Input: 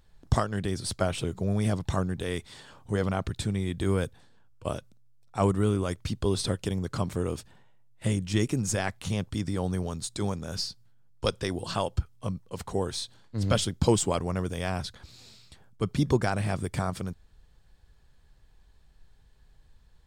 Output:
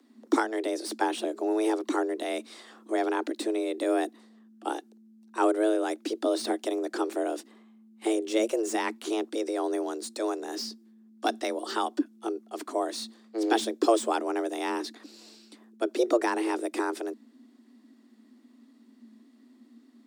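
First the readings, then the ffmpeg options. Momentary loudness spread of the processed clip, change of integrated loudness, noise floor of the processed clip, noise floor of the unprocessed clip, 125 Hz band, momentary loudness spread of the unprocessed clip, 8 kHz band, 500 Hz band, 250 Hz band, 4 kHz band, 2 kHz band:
11 LU, +0.5 dB, -59 dBFS, -58 dBFS, under -35 dB, 11 LU, -3.5 dB, +3.5 dB, +1.0 dB, -2.0 dB, +2.0 dB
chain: -filter_complex "[0:a]acrossover=split=280|920|3200[a][b][c][d];[d]asoftclip=type=tanh:threshold=-33.5dB[e];[a][b][c][e]amix=inputs=4:normalize=0,afreqshift=220"

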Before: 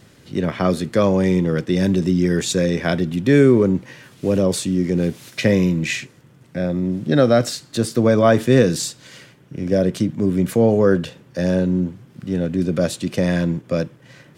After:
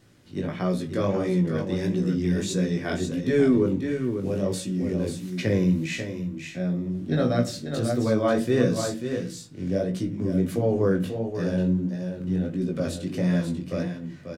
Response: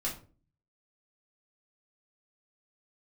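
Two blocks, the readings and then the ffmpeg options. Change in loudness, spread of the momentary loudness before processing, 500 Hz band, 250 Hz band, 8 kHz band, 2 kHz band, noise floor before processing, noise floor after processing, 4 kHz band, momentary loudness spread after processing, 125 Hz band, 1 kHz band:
-7.0 dB, 10 LU, -7.5 dB, -6.0 dB, -9.0 dB, -8.0 dB, -50 dBFS, -40 dBFS, -8.5 dB, 8 LU, -5.5 dB, -8.0 dB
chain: -filter_complex "[0:a]aecho=1:1:540:0.447,asplit=2[a][b];[1:a]atrim=start_sample=2205,lowshelf=f=440:g=5.5[c];[b][c]afir=irnorm=-1:irlink=0,volume=-10dB[d];[a][d]amix=inputs=2:normalize=0,flanger=delay=16:depth=5.8:speed=1.5,volume=-8.5dB"

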